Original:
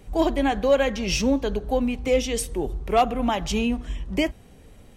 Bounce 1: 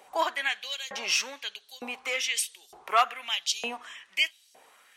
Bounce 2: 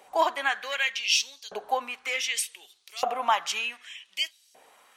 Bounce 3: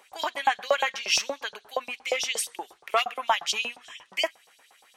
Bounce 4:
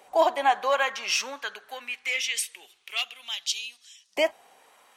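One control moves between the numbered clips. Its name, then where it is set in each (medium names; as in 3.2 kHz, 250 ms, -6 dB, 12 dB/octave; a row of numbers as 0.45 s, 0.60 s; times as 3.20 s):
LFO high-pass, rate: 1.1 Hz, 0.66 Hz, 8.5 Hz, 0.24 Hz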